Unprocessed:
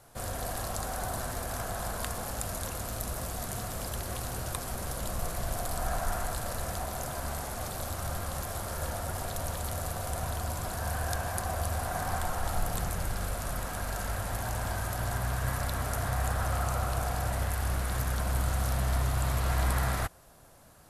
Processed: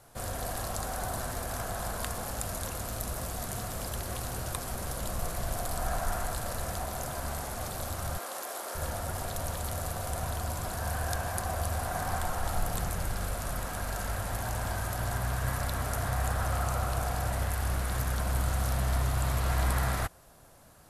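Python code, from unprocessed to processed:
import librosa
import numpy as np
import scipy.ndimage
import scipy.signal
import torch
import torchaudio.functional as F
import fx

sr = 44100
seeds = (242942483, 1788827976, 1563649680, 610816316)

y = fx.highpass(x, sr, hz=310.0, slope=24, at=(8.18, 8.75))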